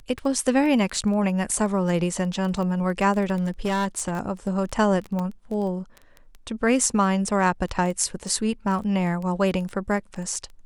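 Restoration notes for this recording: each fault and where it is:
crackle 13 per s
3.35–4.12 s: clipped -20 dBFS
5.19 s: pop -18 dBFS

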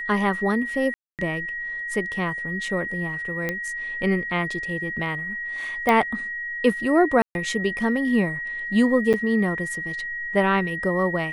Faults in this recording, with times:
whine 1.9 kHz -28 dBFS
0.94–1.19 s: dropout 248 ms
3.49 s: pop -12 dBFS
5.89 s: pop -8 dBFS
7.22–7.35 s: dropout 131 ms
9.13–9.14 s: dropout 7.6 ms

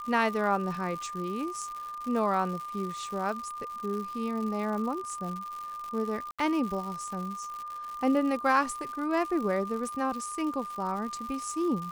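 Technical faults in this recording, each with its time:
crackle 180 per s -36 dBFS
whine 1.2 kHz -36 dBFS
6.31–6.39 s: dropout 76 ms

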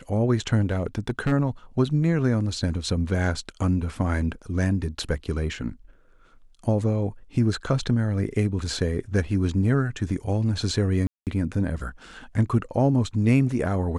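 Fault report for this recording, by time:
0.70–1.33 s: clipped -18.5 dBFS
11.07–11.27 s: dropout 198 ms

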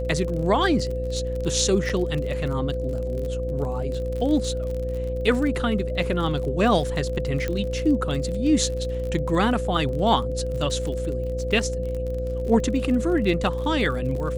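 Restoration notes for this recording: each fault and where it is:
buzz 60 Hz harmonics 11 -29 dBFS
crackle 37 per s -30 dBFS
whine 510 Hz -28 dBFS
1.89–1.90 s: dropout 5.7 ms
7.48 s: pop -14 dBFS

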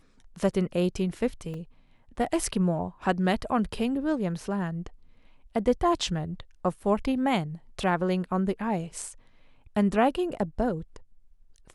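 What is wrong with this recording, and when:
1.54 s: dropout 2.9 ms

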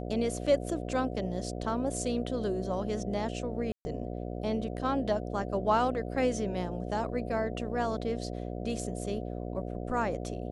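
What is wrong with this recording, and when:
buzz 60 Hz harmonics 12 -37 dBFS
3.72–3.85 s: dropout 130 ms

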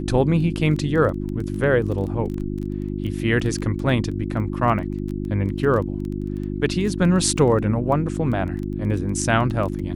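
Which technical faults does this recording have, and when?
crackle 15 per s -28 dBFS
hum 50 Hz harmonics 7 -27 dBFS

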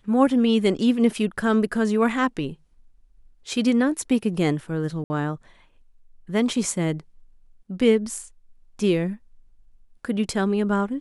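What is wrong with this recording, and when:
5.04–5.10 s: dropout 60 ms

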